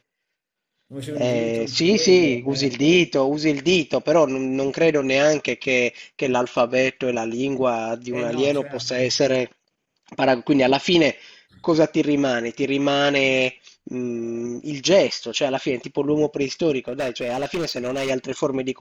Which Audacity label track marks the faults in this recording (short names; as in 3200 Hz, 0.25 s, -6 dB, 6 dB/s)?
16.880000	18.110000	clipped -21 dBFS